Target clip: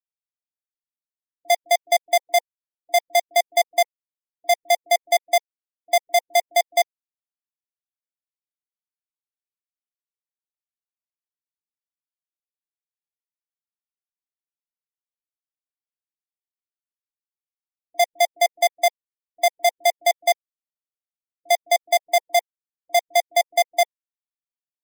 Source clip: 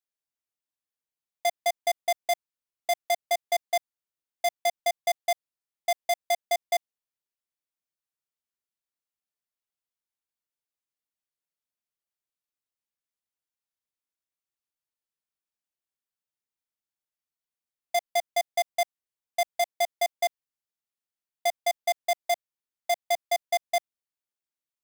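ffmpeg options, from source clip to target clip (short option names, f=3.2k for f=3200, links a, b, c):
-filter_complex "[0:a]afftfilt=real='re*gte(hypot(re,im),0.01)':imag='im*gte(hypot(re,im),0.01)':win_size=1024:overlap=0.75,acrossover=split=270[a][b];[b]adelay=50[c];[a][c]amix=inputs=2:normalize=0,volume=8dB"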